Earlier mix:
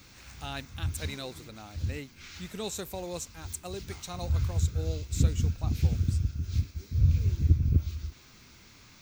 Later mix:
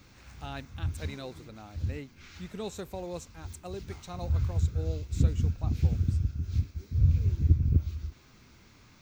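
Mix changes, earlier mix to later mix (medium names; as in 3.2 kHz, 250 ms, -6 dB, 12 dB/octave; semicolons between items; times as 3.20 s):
speech: add treble shelf 9.2 kHz -7 dB; master: add treble shelf 2.1 kHz -8 dB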